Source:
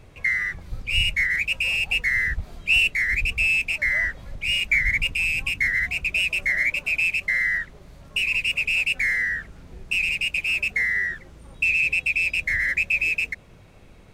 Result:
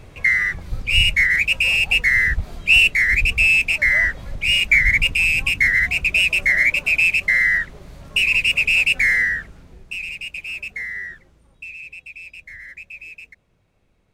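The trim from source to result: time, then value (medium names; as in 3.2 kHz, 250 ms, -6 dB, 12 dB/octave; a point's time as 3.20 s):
9.21 s +6 dB
9.98 s -6 dB
11.12 s -6 dB
11.72 s -15 dB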